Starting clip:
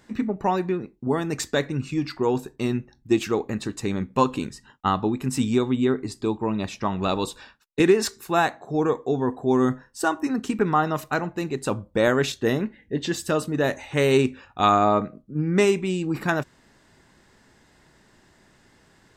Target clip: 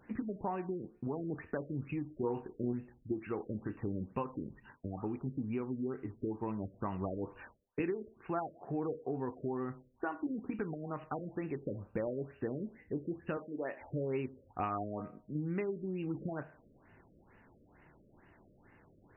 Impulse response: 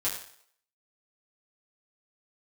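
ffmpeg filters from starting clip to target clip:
-filter_complex "[0:a]acompressor=threshold=-31dB:ratio=4,asettb=1/sr,asplit=3[a][b][c];[a]atrim=end=2.074[d];[b]atrim=start=2.07:end=2.73,asetpts=PTS-STARTPTS,afade=t=in:d=0.004:c=qsin,afade=t=out:st=0.656:d=0.004:c=qsin,asplit=2[e][f];[f]adelay=33,volume=-5.5dB[g];[e][g]amix=inputs=2:normalize=0,atrim=end_sample=29106[h];[c]atrim=start=2.726[i];[d][h]acrossfade=d=0.004:c1=hsin:c2=qsin[j];[j][i]acrossfade=d=0.004:c1=qsin:c2=hsin,asettb=1/sr,asplit=3[k][l][m];[k]atrim=end=13.374[n];[l]atrim=start=13.37:end=13.81,asetpts=PTS-STARTPTS,afade=t=in:d=0.004:c=qsin,afade=t=out:st=0.436:d=0.004:c=qsin,highpass=320,lowpass=5.8k[o];[m]atrim=start=13.806[p];[n][o]acrossfade=d=0.004:c1=hsin:c2=qsin[q];[q][p]acrossfade=d=0.004:c1=qsin:c2=hsin,asplit=2[r][s];[1:a]atrim=start_sample=2205[t];[s][t]afir=irnorm=-1:irlink=0,volume=-15dB[u];[r][u]amix=inputs=2:normalize=0,afftfilt=real='re*lt(b*sr/1024,610*pow(3000/610,0.5+0.5*sin(2*PI*2.2*pts/sr)))':imag='im*lt(b*sr/1024,610*pow(3000/610,0.5+0.5*sin(2*PI*2.2*pts/sr)))':win_size=1024:overlap=0.75,volume=-5.5dB"

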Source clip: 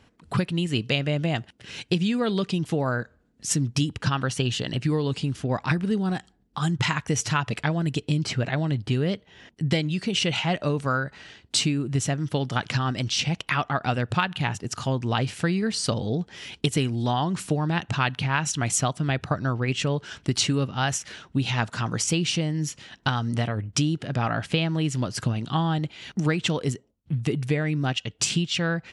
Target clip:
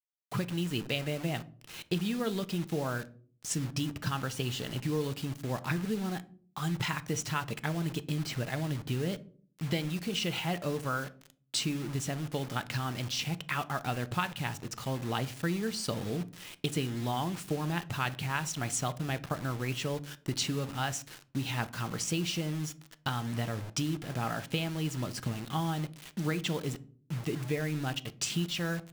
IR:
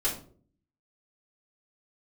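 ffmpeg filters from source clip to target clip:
-filter_complex "[0:a]acrusher=bits=5:mix=0:aa=0.000001,asplit=2[a][b];[1:a]atrim=start_sample=2205,highshelf=f=6.2k:g=-10.5[c];[b][c]afir=irnorm=-1:irlink=0,volume=-17.5dB[d];[a][d]amix=inputs=2:normalize=0,volume=-9dB"

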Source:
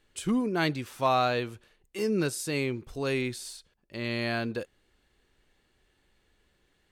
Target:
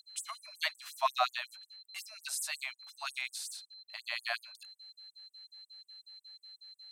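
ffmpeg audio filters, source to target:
-af "aeval=exprs='val(0)+0.00355*sin(2*PI*4100*n/s)':c=same,afftfilt=real='re*gte(b*sr/1024,570*pow(7800/570,0.5+0.5*sin(2*PI*5.5*pts/sr)))':imag='im*gte(b*sr/1024,570*pow(7800/570,0.5+0.5*sin(2*PI*5.5*pts/sr)))':win_size=1024:overlap=0.75"

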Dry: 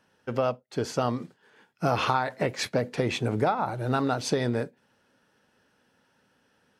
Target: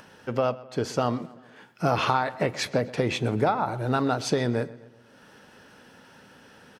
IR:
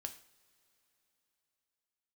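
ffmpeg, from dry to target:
-filter_complex "[0:a]acompressor=mode=upward:threshold=-40dB:ratio=2.5,asplit=2[a][b];[b]adelay=127,lowpass=f=4.6k:p=1,volume=-19dB,asplit=2[c][d];[d]adelay=127,lowpass=f=4.6k:p=1,volume=0.53,asplit=2[e][f];[f]adelay=127,lowpass=f=4.6k:p=1,volume=0.53,asplit=2[g][h];[h]adelay=127,lowpass=f=4.6k:p=1,volume=0.53[i];[a][c][e][g][i]amix=inputs=5:normalize=0,asplit=2[j][k];[1:a]atrim=start_sample=2205,lowpass=7.7k[l];[k][l]afir=irnorm=-1:irlink=0,volume=-11dB[m];[j][m]amix=inputs=2:normalize=0"

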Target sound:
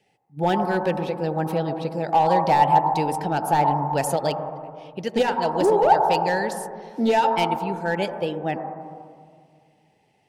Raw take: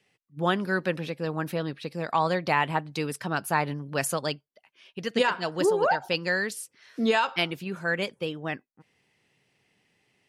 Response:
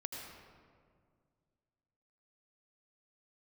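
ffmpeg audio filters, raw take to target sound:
-filter_complex "[0:a]volume=19dB,asoftclip=hard,volume=-19dB,asplit=2[a][b];[b]lowpass=f=850:t=q:w=7.6[c];[1:a]atrim=start_sample=2205[d];[c][d]afir=irnorm=-1:irlink=0,volume=-1.5dB[e];[a][e]amix=inputs=2:normalize=0"

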